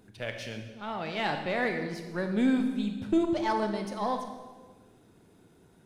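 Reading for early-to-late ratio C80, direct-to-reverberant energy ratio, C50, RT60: 8.5 dB, 5.0 dB, 7.0 dB, 1.4 s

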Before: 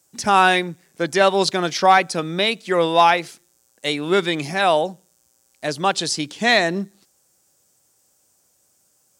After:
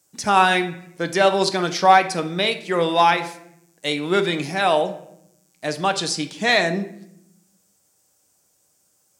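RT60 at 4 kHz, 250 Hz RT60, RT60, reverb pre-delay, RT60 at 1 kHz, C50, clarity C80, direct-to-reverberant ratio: 0.50 s, 1.3 s, 0.80 s, 6 ms, 0.70 s, 13.0 dB, 16.5 dB, 7.0 dB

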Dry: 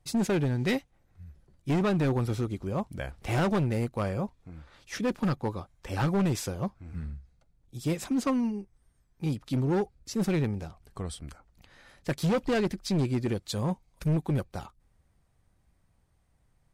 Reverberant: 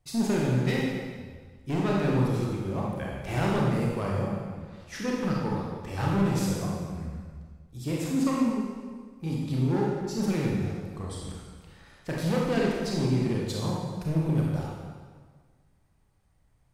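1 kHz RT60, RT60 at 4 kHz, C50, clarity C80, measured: 1.6 s, 1.4 s, -1.0 dB, 1.0 dB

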